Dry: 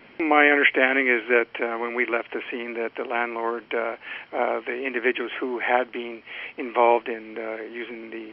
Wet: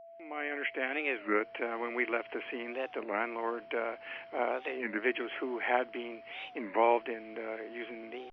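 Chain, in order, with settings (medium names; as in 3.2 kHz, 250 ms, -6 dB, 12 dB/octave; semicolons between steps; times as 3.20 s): fade-in on the opening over 1.80 s; whistle 670 Hz -41 dBFS; warped record 33 1/3 rpm, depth 250 cents; trim -8 dB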